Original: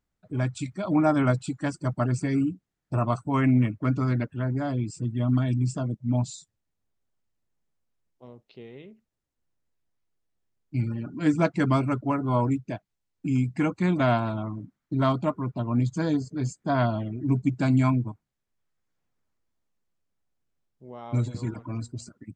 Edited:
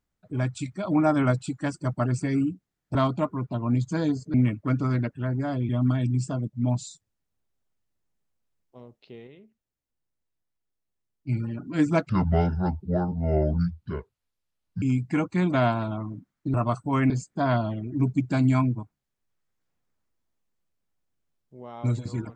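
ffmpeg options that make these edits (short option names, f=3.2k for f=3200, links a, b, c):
-filter_complex "[0:a]asplit=10[a][b][c][d][e][f][g][h][i][j];[a]atrim=end=2.952[k];[b]atrim=start=14.998:end=16.392[l];[c]atrim=start=3.508:end=4.862[m];[d]atrim=start=5.158:end=8.742[n];[e]atrim=start=8.738:end=10.762,asetpts=PTS-STARTPTS,volume=-5dB[o];[f]atrim=start=10.758:end=11.564[p];[g]atrim=start=11.56:end=13.28,asetpts=PTS-STARTPTS,asetrate=27783,aresample=44100[q];[h]atrim=start=13.276:end=15.002[r];[i]atrim=start=2.948:end=3.512[s];[j]atrim=start=16.388[t];[k][l]acrossfade=d=0.004:c1=hsin:c2=hsin[u];[u][m]acrossfade=d=0.004:c1=hsin:c2=hsin[v];[v][n]acrossfade=d=0.004:c1=hsin:c2=hsin[w];[w][o]acrossfade=d=0.004:c1=hsin:c2=hsin[x];[x][p]acrossfade=d=0.004:c1=hsin:c2=hsin[y];[y][q]acrossfade=d=0.004:c1=hsin:c2=hsin[z];[z][r]acrossfade=d=0.004:c1=hsin:c2=hsin[aa];[aa][s]acrossfade=d=0.004:c1=hsin:c2=hsin[ab];[ab][t]acrossfade=d=0.004:c1=hsin:c2=hsin"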